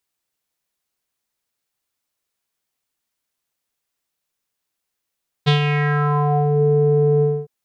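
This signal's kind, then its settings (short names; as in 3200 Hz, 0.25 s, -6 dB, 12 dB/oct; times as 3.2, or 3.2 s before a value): synth note square D3 12 dB/oct, low-pass 470 Hz, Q 4.2, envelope 3 oct, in 1.15 s, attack 21 ms, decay 0.11 s, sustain -6 dB, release 0.25 s, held 1.76 s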